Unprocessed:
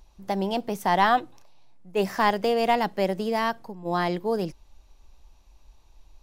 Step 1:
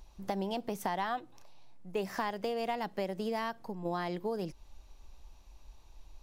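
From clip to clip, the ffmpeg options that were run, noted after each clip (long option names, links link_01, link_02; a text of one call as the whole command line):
ffmpeg -i in.wav -af "acompressor=threshold=-32dB:ratio=5" out.wav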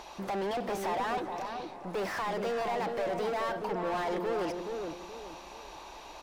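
ffmpeg -i in.wav -filter_complex "[0:a]bass=frequency=250:gain=-9,treble=frequency=4000:gain=1,asplit=2[link_01][link_02];[link_02]highpass=frequency=720:poles=1,volume=38dB,asoftclip=type=tanh:threshold=-19.5dB[link_03];[link_01][link_03]amix=inputs=2:normalize=0,lowpass=frequency=1500:poles=1,volume=-6dB,asplit=2[link_04][link_05];[link_05]adelay=425,lowpass=frequency=960:poles=1,volume=-3.5dB,asplit=2[link_06][link_07];[link_07]adelay=425,lowpass=frequency=960:poles=1,volume=0.37,asplit=2[link_08][link_09];[link_09]adelay=425,lowpass=frequency=960:poles=1,volume=0.37,asplit=2[link_10][link_11];[link_11]adelay=425,lowpass=frequency=960:poles=1,volume=0.37,asplit=2[link_12][link_13];[link_13]adelay=425,lowpass=frequency=960:poles=1,volume=0.37[link_14];[link_04][link_06][link_08][link_10][link_12][link_14]amix=inputs=6:normalize=0,volume=-5.5dB" out.wav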